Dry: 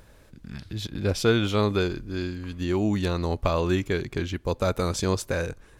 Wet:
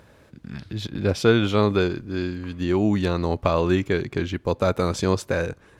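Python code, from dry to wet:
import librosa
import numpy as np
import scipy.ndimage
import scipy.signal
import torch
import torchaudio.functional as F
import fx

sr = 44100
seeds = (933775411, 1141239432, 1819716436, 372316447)

y = scipy.signal.sosfilt(scipy.signal.butter(2, 89.0, 'highpass', fs=sr, output='sos'), x)
y = fx.high_shelf(y, sr, hz=5100.0, db=-9.5)
y = y * 10.0 ** (4.0 / 20.0)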